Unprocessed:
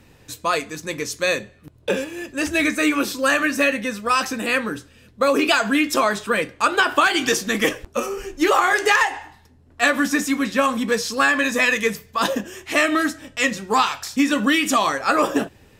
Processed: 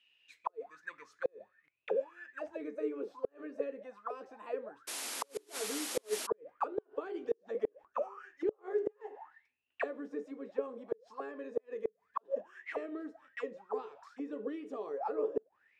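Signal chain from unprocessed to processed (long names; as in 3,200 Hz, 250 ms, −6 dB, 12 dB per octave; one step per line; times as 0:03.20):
envelope filter 430–3,000 Hz, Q 18, down, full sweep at −17 dBFS
sound drawn into the spectrogram noise, 0:04.87–0:06.27, 220–12,000 Hz −42 dBFS
gate with flip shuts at −22 dBFS, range −34 dB
level +1.5 dB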